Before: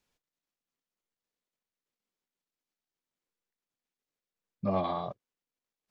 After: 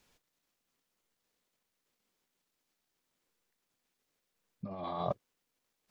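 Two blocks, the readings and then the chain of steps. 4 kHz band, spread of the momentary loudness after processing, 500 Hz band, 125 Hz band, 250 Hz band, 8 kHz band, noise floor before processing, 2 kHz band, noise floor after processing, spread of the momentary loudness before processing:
-4.5 dB, 9 LU, -5.0 dB, -5.0 dB, -8.5 dB, no reading, under -85 dBFS, -7.0 dB, -84 dBFS, 13 LU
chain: compressor with a negative ratio -40 dBFS, ratio -1; trim +2 dB

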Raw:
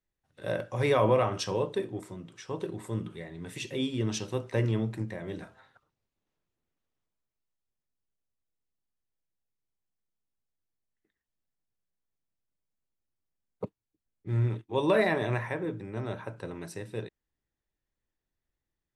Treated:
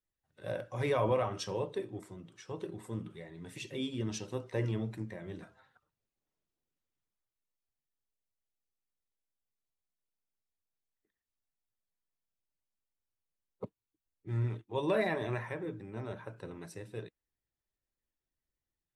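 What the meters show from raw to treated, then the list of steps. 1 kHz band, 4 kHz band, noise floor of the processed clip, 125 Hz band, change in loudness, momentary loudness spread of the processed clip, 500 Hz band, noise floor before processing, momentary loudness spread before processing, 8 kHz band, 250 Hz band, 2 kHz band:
-6.0 dB, -6.0 dB, under -85 dBFS, -6.0 dB, -6.0 dB, 17 LU, -6.0 dB, under -85 dBFS, 18 LU, -5.5 dB, -6.0 dB, -6.5 dB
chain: coarse spectral quantiser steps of 15 dB; trim -5.5 dB

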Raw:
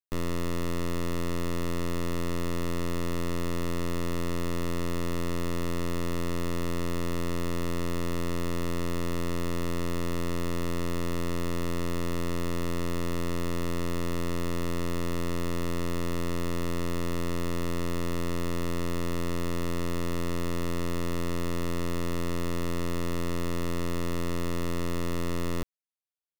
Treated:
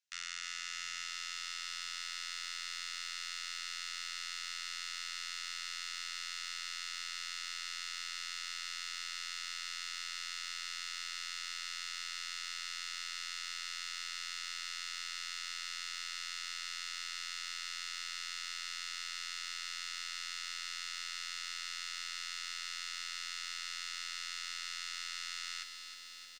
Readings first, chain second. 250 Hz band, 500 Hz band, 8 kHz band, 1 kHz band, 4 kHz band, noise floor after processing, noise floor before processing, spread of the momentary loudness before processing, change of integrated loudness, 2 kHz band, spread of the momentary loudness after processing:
under -40 dB, under -40 dB, +1.0 dB, -11.0 dB, +4.0 dB, -44 dBFS, -28 dBFS, 0 LU, -7.5 dB, -1.0 dB, 0 LU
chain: elliptic high-pass 1.4 kHz, stop band 40 dB; peaking EQ 2.5 kHz +2.5 dB 0.85 oct; peak limiter -31.5 dBFS, peak gain reduction 7 dB; four-pole ladder low-pass 7.5 kHz, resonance 40%; doubling 13 ms -13 dB; feedback delay 121 ms, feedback 26%, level -16 dB; bit-crushed delay 310 ms, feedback 80%, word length 13-bit, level -8 dB; trim +13.5 dB

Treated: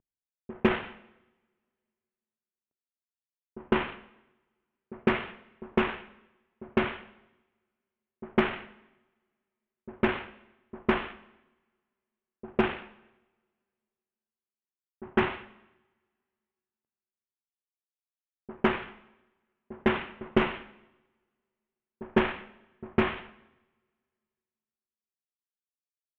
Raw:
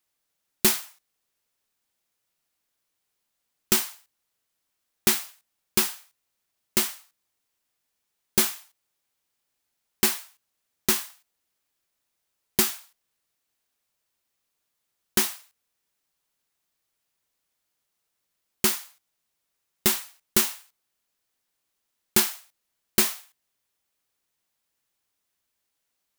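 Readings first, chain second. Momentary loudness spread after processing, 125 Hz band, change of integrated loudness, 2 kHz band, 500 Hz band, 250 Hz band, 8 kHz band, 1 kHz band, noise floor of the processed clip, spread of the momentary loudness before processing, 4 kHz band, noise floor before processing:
20 LU, +3.0 dB, -5.5 dB, +1.0 dB, +5.5 dB, +4.0 dB, under -40 dB, +4.5 dB, under -85 dBFS, 17 LU, -11.5 dB, -80 dBFS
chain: CVSD coder 16 kbps; in parallel at -7 dB: overload inside the chain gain 24.5 dB; on the sum: pre-echo 155 ms -18.5 dB; level-controlled noise filter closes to 460 Hz, open at -29.5 dBFS; two-slope reverb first 0.92 s, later 2.4 s, from -25 dB, DRR 13 dB; trim +5 dB

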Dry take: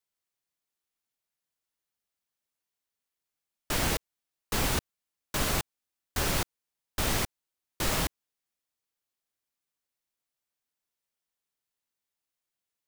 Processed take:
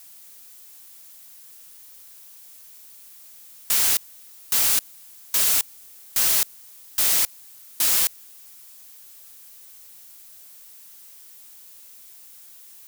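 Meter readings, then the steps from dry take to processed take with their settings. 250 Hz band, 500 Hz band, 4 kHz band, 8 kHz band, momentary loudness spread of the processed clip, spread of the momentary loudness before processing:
-11.0 dB, -7.0 dB, +7.0 dB, +12.5 dB, 8 LU, 8 LU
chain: pre-emphasis filter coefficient 0.97; power-law waveshaper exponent 0.5; trim +6.5 dB

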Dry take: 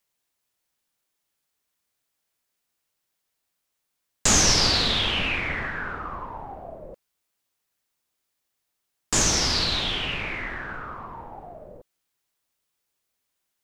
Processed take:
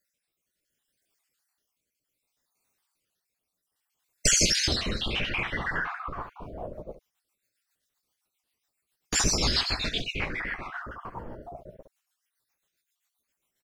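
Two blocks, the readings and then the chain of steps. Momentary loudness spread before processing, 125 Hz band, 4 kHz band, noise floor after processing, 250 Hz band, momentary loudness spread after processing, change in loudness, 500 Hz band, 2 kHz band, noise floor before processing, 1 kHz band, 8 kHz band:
22 LU, -3.0 dB, -5.0 dB, -84 dBFS, -3.5 dB, 19 LU, -4.0 dB, -3.5 dB, -3.0 dB, -79 dBFS, -5.0 dB, -3.5 dB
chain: random holes in the spectrogram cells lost 53%; early reflections 17 ms -11 dB, 70 ms -10.5 dB; in parallel at -2 dB: compression, threshold -33 dBFS, peak gain reduction 13.5 dB; on the sum: rotary cabinet horn 0.65 Hz, later 7.5 Hz, at 5.80 s; warped record 33 1/3 rpm, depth 160 cents

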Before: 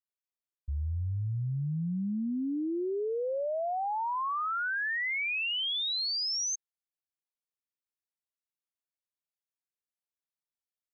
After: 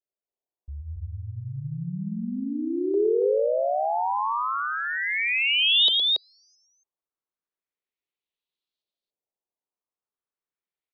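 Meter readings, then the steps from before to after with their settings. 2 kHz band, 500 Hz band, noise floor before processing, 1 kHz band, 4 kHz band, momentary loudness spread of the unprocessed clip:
+5.5 dB, +9.5 dB, under -85 dBFS, +6.0 dB, +10.0 dB, 5 LU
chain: LFO low-pass saw up 0.34 Hz 570–4300 Hz; fifteen-band graphic EQ 100 Hz -5 dB, 400 Hz +7 dB, 1.6 kHz -6 dB, 4 kHz +8 dB; loudspeakers at several distances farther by 39 m -7 dB, 96 m -2 dB; trim -1.5 dB

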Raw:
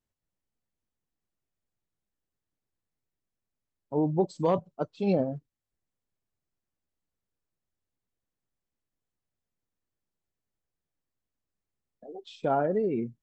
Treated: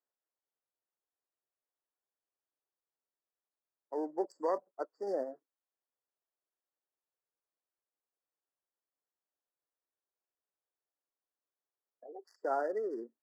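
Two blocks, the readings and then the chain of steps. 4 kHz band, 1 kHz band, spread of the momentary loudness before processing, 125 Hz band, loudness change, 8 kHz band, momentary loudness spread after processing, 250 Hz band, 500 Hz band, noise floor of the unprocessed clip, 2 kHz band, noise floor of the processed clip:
under -15 dB, -6.0 dB, 17 LU, under -35 dB, -8.5 dB, no reading, 18 LU, -14.0 dB, -7.0 dB, under -85 dBFS, -4.0 dB, under -85 dBFS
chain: local Wiener filter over 15 samples; Bessel high-pass 560 Hz, order 8; dynamic bell 820 Hz, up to -5 dB, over -40 dBFS, Q 0.88; brick-wall FIR band-stop 2–4.5 kHz

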